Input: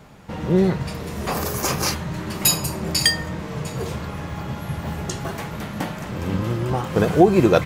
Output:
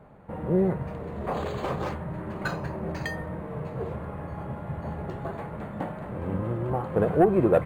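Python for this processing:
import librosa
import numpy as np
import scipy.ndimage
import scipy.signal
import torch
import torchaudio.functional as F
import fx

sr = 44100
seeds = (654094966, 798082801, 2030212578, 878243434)

y = fx.curve_eq(x, sr, hz=(310.0, 560.0, 1900.0, 6400.0, 12000.0), db=(0, 5, -4, -26, -4))
y = 10.0 ** (-4.0 / 20.0) * np.tanh(y / 10.0 ** (-4.0 / 20.0))
y = np.interp(np.arange(len(y)), np.arange(len(y))[::4], y[::4])
y = F.gain(torch.from_numpy(y), -6.0).numpy()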